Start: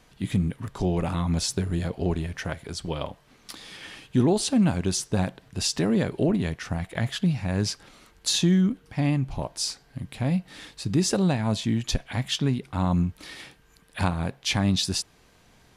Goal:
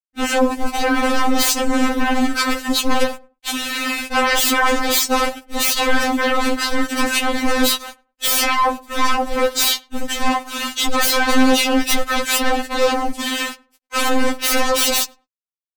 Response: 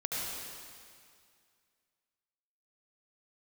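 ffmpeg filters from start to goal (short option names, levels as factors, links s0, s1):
-filter_complex "[0:a]agate=range=0.282:threshold=0.00398:ratio=16:detection=peak,equalizer=f=3000:t=o:w=0.22:g=-2.5,aeval=exprs='val(0)*gte(abs(val(0)),0.00473)':c=same,asetrate=35002,aresample=44100,atempo=1.25992,aeval=exprs='0.266*sin(PI/2*10*val(0)/0.266)':c=same,asplit=2[s0][s1];[s1]asetrate=35002,aresample=44100,atempo=1.25992,volume=0.316[s2];[s0][s2]amix=inputs=2:normalize=0,asplit=2[s3][s4];[s4]adelay=103,lowpass=f=1100:p=1,volume=0.1,asplit=2[s5][s6];[s6]adelay=103,lowpass=f=1100:p=1,volume=0.26[s7];[s5][s7]amix=inputs=2:normalize=0[s8];[s3][s8]amix=inputs=2:normalize=0,afftfilt=real='re*3.46*eq(mod(b,12),0)':imag='im*3.46*eq(mod(b,12),0)':win_size=2048:overlap=0.75"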